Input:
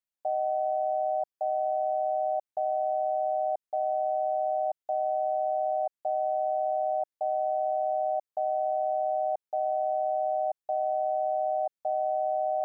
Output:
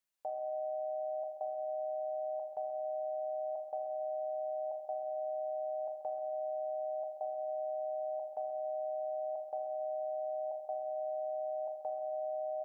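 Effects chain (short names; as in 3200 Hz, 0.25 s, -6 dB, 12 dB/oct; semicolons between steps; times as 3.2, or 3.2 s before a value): low shelf 490 Hz -3.5 dB; limiter -34.5 dBFS, peak gain reduction 11.5 dB; on a send: echo 0.133 s -13.5 dB; on the sum: Schroeder reverb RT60 1.1 s, combs from 30 ms, DRR 5 dB; gain +3.5 dB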